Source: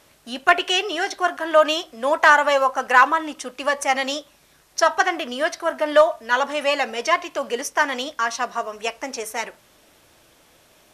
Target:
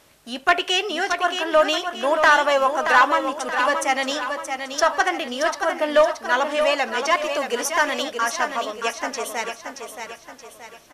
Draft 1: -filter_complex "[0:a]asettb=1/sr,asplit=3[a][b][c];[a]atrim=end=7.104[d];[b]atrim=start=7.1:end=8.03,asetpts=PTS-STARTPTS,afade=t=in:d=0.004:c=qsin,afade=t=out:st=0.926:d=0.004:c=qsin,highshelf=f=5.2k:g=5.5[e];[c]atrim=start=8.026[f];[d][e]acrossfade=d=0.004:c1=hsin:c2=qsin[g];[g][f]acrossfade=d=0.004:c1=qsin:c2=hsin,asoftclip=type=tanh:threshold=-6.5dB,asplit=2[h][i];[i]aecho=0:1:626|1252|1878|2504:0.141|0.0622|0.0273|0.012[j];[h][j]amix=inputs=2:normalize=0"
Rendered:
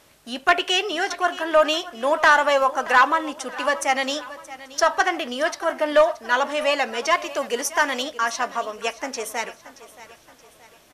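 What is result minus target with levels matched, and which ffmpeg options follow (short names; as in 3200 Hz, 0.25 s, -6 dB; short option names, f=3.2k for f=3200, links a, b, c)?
echo-to-direct -10 dB
-filter_complex "[0:a]asettb=1/sr,asplit=3[a][b][c];[a]atrim=end=7.104[d];[b]atrim=start=7.1:end=8.03,asetpts=PTS-STARTPTS,afade=t=in:d=0.004:c=qsin,afade=t=out:st=0.926:d=0.004:c=qsin,highshelf=f=5.2k:g=5.5[e];[c]atrim=start=8.026[f];[d][e]acrossfade=d=0.004:c1=hsin:c2=qsin[g];[g][f]acrossfade=d=0.004:c1=qsin:c2=hsin,asoftclip=type=tanh:threshold=-6.5dB,asplit=2[h][i];[i]aecho=0:1:626|1252|1878|2504|3130:0.447|0.197|0.0865|0.0381|0.0167[j];[h][j]amix=inputs=2:normalize=0"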